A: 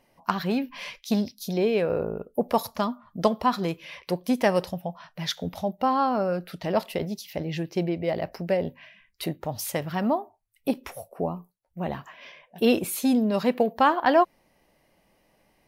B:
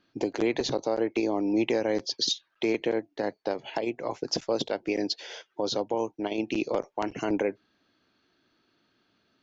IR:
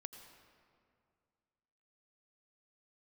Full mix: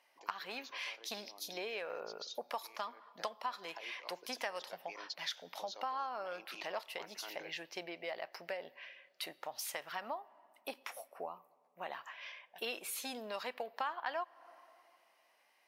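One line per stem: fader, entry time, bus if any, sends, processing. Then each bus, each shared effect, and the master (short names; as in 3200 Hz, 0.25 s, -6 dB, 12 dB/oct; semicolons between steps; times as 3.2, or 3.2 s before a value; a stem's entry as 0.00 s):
-2.0 dB, 0.00 s, send -14 dB, high shelf 7200 Hz -7.5 dB
2.91 s -21 dB -> 3.43 s -13 dB, 0.00 s, send -11 dB, dry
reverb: on, RT60 2.2 s, pre-delay 78 ms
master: HPF 1000 Hz 12 dB/oct; compressor 3:1, threshold -39 dBFS, peak gain reduction 14.5 dB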